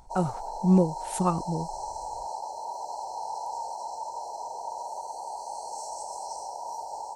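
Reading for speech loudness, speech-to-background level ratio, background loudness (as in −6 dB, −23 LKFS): −27.0 LKFS, 9.5 dB, −36.5 LKFS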